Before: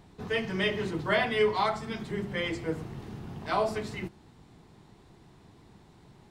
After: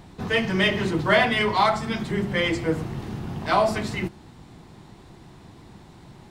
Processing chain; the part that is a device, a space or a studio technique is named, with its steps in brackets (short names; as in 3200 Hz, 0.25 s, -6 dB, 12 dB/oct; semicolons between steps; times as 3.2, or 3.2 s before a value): notch 430 Hz, Q 12; parallel distortion (in parallel at -12 dB: hard clip -30.5 dBFS, distortion -7 dB); on the sum: gain +7 dB